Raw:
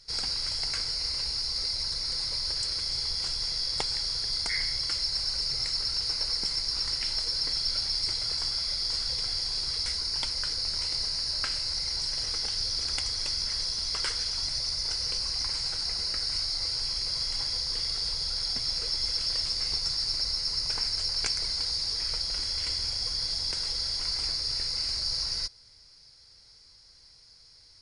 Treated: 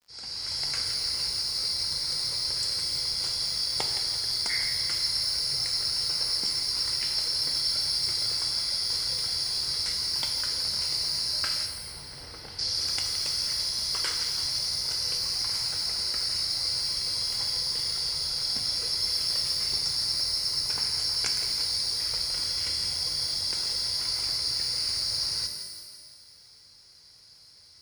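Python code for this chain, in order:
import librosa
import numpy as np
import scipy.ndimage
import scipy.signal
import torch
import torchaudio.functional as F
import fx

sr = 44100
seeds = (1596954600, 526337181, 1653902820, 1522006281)

p1 = fx.fade_in_head(x, sr, length_s=0.63)
p2 = scipy.signal.sosfilt(scipy.signal.butter(2, 68.0, 'highpass', fs=sr, output='sos'), p1)
p3 = p2 + fx.echo_thinned(p2, sr, ms=168, feedback_pct=60, hz=420.0, wet_db=-11.5, dry=0)
p4 = fx.dmg_crackle(p3, sr, seeds[0], per_s=45.0, level_db=-51.0)
p5 = fx.spacing_loss(p4, sr, db_at_10k=30, at=(11.66, 12.59))
y = fx.rev_shimmer(p5, sr, seeds[1], rt60_s=1.3, semitones=12, shimmer_db=-8, drr_db=5.5)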